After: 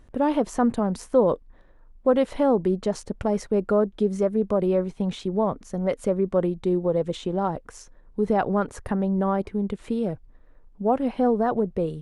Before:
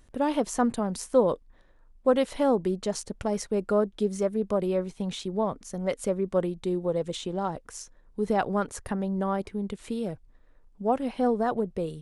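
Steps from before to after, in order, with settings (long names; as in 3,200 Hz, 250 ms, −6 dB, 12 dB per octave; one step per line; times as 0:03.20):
high-shelf EQ 2,900 Hz −12 dB
in parallel at −1 dB: brickwall limiter −20.5 dBFS, peak gain reduction 10.5 dB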